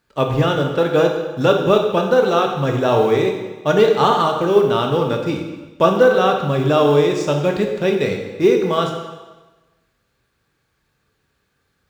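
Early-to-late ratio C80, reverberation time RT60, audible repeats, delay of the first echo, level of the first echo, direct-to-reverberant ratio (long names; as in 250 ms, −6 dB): 6.5 dB, 1.2 s, no echo audible, no echo audible, no echo audible, 2.5 dB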